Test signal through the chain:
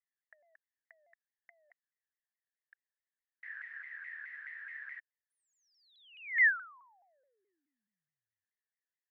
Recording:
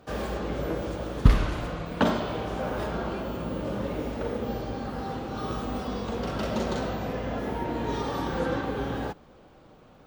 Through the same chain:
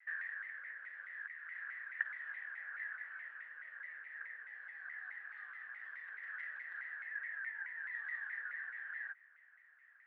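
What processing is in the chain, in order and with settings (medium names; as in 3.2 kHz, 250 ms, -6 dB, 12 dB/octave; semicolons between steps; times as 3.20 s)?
compression 6:1, threshold -32 dBFS; Butterworth band-pass 1.8 kHz, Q 7.6; vibrato with a chosen wave saw down 4.7 Hz, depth 160 cents; trim +12.5 dB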